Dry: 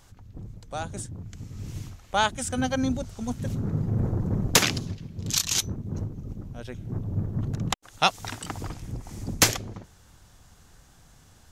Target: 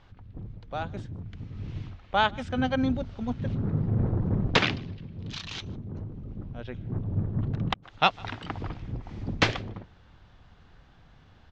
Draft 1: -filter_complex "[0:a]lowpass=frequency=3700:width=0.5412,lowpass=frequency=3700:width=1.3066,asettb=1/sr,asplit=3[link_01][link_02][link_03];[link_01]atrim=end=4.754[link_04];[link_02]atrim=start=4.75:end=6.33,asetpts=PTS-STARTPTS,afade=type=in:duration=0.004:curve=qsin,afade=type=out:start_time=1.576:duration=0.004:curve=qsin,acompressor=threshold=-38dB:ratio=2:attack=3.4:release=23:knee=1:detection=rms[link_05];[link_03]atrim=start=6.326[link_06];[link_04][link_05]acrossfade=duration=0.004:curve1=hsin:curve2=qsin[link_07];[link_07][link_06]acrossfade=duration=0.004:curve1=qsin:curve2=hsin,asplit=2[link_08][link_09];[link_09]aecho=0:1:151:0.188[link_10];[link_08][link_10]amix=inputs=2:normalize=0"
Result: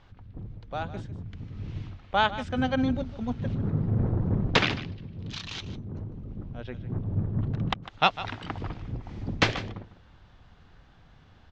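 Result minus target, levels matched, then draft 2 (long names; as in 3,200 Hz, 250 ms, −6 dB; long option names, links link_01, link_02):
echo-to-direct +11.5 dB
-filter_complex "[0:a]lowpass=frequency=3700:width=0.5412,lowpass=frequency=3700:width=1.3066,asettb=1/sr,asplit=3[link_01][link_02][link_03];[link_01]atrim=end=4.754[link_04];[link_02]atrim=start=4.75:end=6.33,asetpts=PTS-STARTPTS,afade=type=in:duration=0.004:curve=qsin,afade=type=out:start_time=1.576:duration=0.004:curve=qsin,acompressor=threshold=-38dB:ratio=2:attack=3.4:release=23:knee=1:detection=rms[link_05];[link_03]atrim=start=6.326[link_06];[link_04][link_05]acrossfade=duration=0.004:curve1=hsin:curve2=qsin[link_07];[link_07][link_06]acrossfade=duration=0.004:curve1=qsin:curve2=hsin,asplit=2[link_08][link_09];[link_09]aecho=0:1:151:0.0501[link_10];[link_08][link_10]amix=inputs=2:normalize=0"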